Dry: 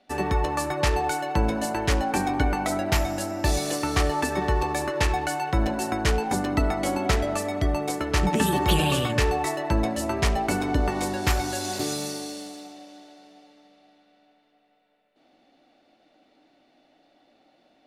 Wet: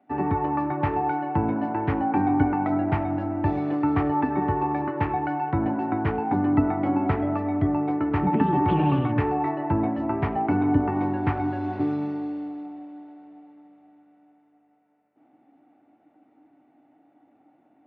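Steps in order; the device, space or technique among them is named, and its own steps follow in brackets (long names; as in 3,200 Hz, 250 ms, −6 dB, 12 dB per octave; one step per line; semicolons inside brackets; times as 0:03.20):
bass cabinet (loudspeaker in its box 89–2,000 Hz, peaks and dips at 96 Hz +9 dB, 140 Hz +5 dB, 290 Hz +10 dB, 550 Hz −6 dB, 840 Hz +6 dB, 1,700 Hz −4 dB)
level −2 dB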